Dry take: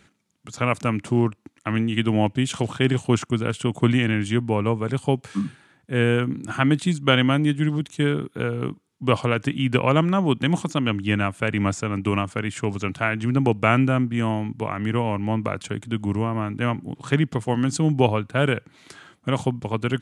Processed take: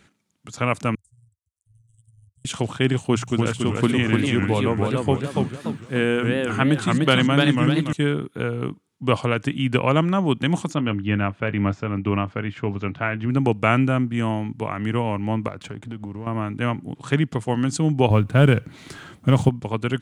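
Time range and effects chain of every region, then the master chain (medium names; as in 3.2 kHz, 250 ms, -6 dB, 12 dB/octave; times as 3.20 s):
0.95–2.45 s: inverse Chebyshev band-stop 230–2500 Hz, stop band 70 dB + distance through air 68 m + AM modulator 21 Hz, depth 40%
2.99–7.93 s: hum notches 60/120/180 Hz + word length cut 12-bit, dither none + modulated delay 291 ms, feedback 41%, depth 207 cents, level -3 dB
10.75–13.30 s: distance through air 260 m + doubling 20 ms -14 dB
15.48–16.27 s: low-pass 2 kHz 6 dB/octave + compression 5:1, threshold -33 dBFS + waveshaping leveller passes 1
18.10–19.49 s: companding laws mixed up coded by mu + bass shelf 250 Hz +11 dB
whole clip: none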